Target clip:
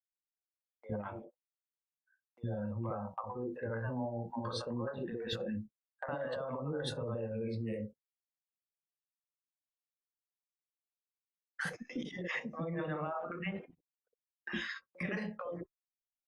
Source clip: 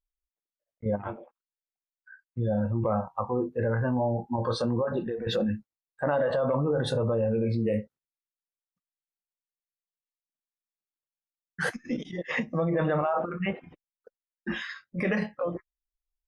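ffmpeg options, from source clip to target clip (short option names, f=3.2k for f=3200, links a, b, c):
-filter_complex "[0:a]agate=range=-25dB:threshold=-42dB:ratio=16:detection=peak,lowshelf=f=400:g=-4.5,asplit=2[a][b];[b]alimiter=limit=-22.5dB:level=0:latency=1,volume=0.5dB[c];[a][c]amix=inputs=2:normalize=0,acompressor=threshold=-31dB:ratio=2.5,acrossover=split=600[d][e];[d]adelay=60[f];[f][e]amix=inputs=2:normalize=0,volume=-6dB"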